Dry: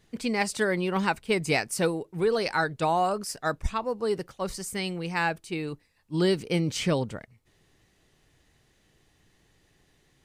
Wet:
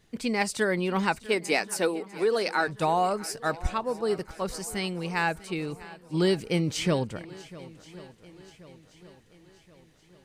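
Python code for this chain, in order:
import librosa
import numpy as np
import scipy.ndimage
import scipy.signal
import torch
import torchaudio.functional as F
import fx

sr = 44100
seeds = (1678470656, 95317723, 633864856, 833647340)

p1 = fx.highpass(x, sr, hz=240.0, slope=24, at=(1.26, 2.68))
y = p1 + fx.echo_swing(p1, sr, ms=1079, ratio=1.5, feedback_pct=47, wet_db=-19, dry=0)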